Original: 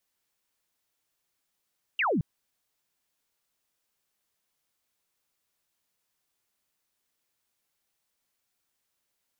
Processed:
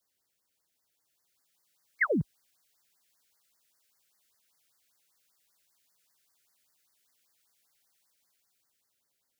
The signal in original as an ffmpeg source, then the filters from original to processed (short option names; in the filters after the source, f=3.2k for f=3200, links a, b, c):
-f lavfi -i "aevalsrc='0.0708*clip(t/0.002,0,1)*clip((0.22-t)/0.002,0,1)*sin(2*PI*3000*0.22/log(130/3000)*(exp(log(130/3000)*t/0.22)-1))':d=0.22:s=44100"
-filter_complex "[0:a]highpass=43,acrossover=split=180|430|820[a][b][c][d];[d]dynaudnorm=f=300:g=9:m=7dB[e];[a][b][c][e]amix=inputs=4:normalize=0,afftfilt=real='re*(1-between(b*sr/1024,880*pow(3100/880,0.5+0.5*sin(2*PI*5.1*pts/sr))/1.41,880*pow(3100/880,0.5+0.5*sin(2*PI*5.1*pts/sr))*1.41))':imag='im*(1-between(b*sr/1024,880*pow(3100/880,0.5+0.5*sin(2*PI*5.1*pts/sr))/1.41,880*pow(3100/880,0.5+0.5*sin(2*PI*5.1*pts/sr))*1.41))':win_size=1024:overlap=0.75"